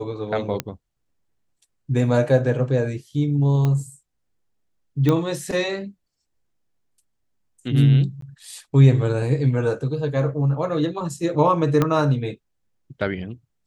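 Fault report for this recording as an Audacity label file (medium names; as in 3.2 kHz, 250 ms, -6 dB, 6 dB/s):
0.600000	0.600000	pop -8 dBFS
3.650000	3.650000	pop -12 dBFS
5.090000	5.090000	pop -8 dBFS
8.210000	8.220000	dropout 13 ms
11.820000	11.820000	pop -7 dBFS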